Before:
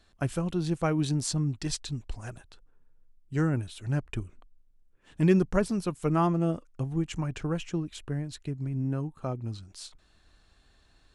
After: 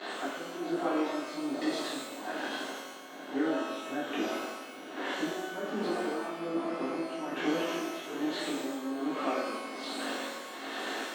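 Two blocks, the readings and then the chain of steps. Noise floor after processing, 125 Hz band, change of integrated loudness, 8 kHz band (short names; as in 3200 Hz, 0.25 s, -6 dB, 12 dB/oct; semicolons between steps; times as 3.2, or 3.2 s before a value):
-44 dBFS, -24.5 dB, -4.5 dB, -5.0 dB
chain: zero-crossing step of -33 dBFS; steep high-pass 260 Hz 36 dB/oct; spectral gate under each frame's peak -25 dB strong; air absorption 230 m; notch 2400 Hz, Q 14; compressor, threshold -37 dBFS, peak gain reduction 16.5 dB; bell 5400 Hz -8 dB 0.5 oct; swelling echo 84 ms, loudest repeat 5, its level -16 dB; tremolo 1.2 Hz, depth 75%; shimmer reverb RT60 1 s, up +12 st, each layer -8 dB, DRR -9.5 dB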